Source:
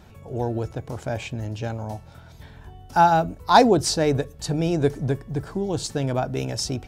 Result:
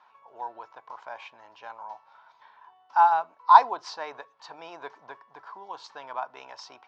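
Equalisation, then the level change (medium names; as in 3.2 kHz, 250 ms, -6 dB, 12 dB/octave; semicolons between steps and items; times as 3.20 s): resonant high-pass 1 kHz, resonance Q 7.1; low-pass 6 kHz 24 dB/octave; distance through air 130 m; -9.0 dB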